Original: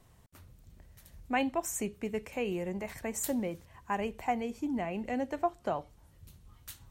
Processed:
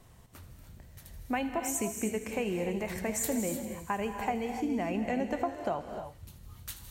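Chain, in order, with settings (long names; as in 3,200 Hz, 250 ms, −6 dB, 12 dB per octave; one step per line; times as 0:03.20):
downward compressor, threshold −33 dBFS, peak gain reduction 9.5 dB
on a send: delay with a high-pass on its return 80 ms, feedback 78%, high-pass 2,900 Hz, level −13 dB
on the sum: reverb whose tail is shaped and stops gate 330 ms rising, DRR 6 dB
level +4.5 dB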